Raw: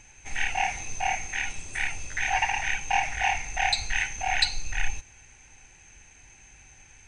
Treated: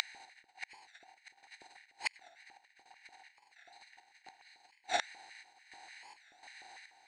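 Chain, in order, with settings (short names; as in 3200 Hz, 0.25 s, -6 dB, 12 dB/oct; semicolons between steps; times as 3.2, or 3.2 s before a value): per-bin compression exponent 0.2; bell 3900 Hz -6.5 dB 2.1 oct; notch 2600 Hz, Q 7.3; negative-ratio compressor -24 dBFS, ratio -0.5; limiter -15 dBFS, peak gain reduction 4.5 dB; flange 0.63 Hz, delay 6.4 ms, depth 4.6 ms, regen -43%; chopper 1.4 Hz, depth 65%, duty 60%; LFO high-pass square 3.4 Hz 350–1900 Hz; flipped gate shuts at -33 dBFS, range -39 dB; record warp 45 rpm, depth 160 cents; gain +14.5 dB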